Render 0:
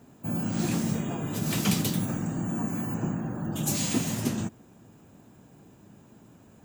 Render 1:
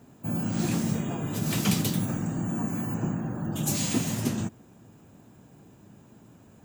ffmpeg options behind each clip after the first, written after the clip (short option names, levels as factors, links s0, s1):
-af "equalizer=f=110:w=1.5:g=2"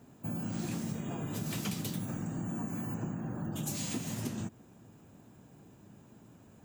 -af "acompressor=threshold=0.0316:ratio=4,volume=0.668"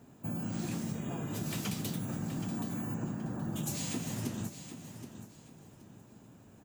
-af "aecho=1:1:774|1548|2322:0.282|0.0733|0.0191"